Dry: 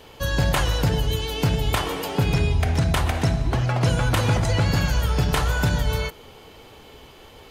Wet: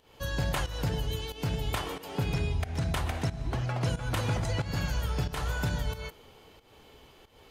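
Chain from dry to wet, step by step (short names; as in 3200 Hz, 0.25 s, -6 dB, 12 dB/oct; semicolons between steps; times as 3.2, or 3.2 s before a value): pump 91 bpm, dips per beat 1, -13 dB, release 0.25 s; gain -9 dB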